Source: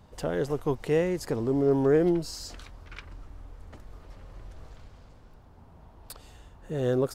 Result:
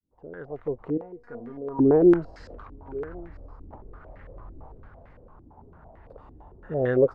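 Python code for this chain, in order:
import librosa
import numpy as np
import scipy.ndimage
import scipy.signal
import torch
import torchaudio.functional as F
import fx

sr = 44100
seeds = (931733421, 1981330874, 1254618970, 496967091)

p1 = fx.fade_in_head(x, sr, length_s=1.8)
p2 = fx.comb_fb(p1, sr, f0_hz=240.0, decay_s=0.23, harmonics='all', damping=0.0, mix_pct=90, at=(0.97, 1.79))
p3 = p2 + fx.echo_single(p2, sr, ms=1094, db=-20.0, dry=0)
y = fx.filter_held_lowpass(p3, sr, hz=8.9, low_hz=310.0, high_hz=1900.0)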